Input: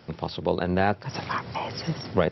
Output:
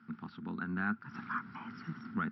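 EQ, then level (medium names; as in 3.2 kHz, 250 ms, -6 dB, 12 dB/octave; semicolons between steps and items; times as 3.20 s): two resonant band-passes 560 Hz, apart 2.6 oct; +1.0 dB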